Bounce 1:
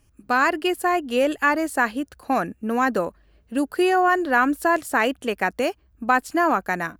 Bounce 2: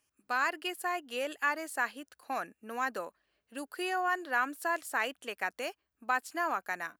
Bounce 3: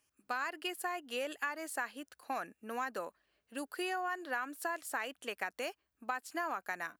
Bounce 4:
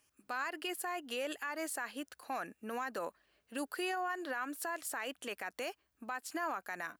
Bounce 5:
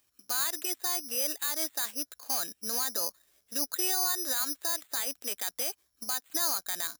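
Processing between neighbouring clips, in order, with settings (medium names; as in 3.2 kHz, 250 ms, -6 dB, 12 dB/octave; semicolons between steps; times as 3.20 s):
high-pass 1.1 kHz 6 dB/octave; trim -8 dB
compression, threshold -33 dBFS, peak gain reduction 9 dB
peak limiter -32.5 dBFS, peak gain reduction 11 dB; trim +4 dB
careless resampling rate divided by 8×, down filtered, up zero stuff; trim -1 dB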